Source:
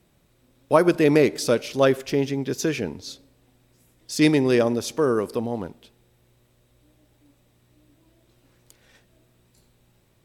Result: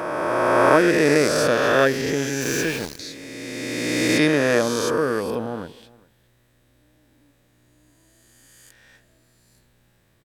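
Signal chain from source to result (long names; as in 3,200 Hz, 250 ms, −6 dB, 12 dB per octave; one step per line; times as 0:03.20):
peak hold with a rise ahead of every peak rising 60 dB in 2.80 s
parametric band 1,700 Hz +8.5 dB 0.33 octaves
notch filter 380 Hz, Q 12
0:02.41–0:02.99: centre clipping without the shift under −25 dBFS
on a send: single-tap delay 410 ms −23.5 dB
on the sum: level −3 dB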